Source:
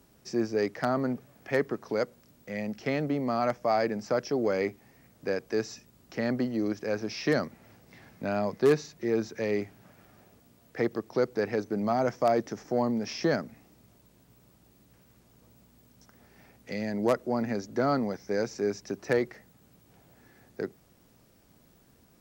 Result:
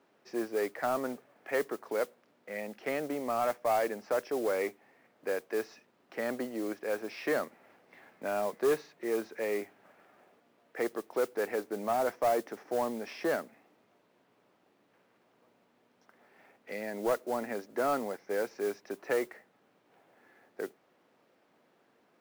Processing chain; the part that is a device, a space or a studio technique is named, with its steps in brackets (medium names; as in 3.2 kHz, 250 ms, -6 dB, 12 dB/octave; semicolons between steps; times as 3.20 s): carbon microphone (band-pass 410–2600 Hz; saturation -20 dBFS, distortion -18 dB; modulation noise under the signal 19 dB)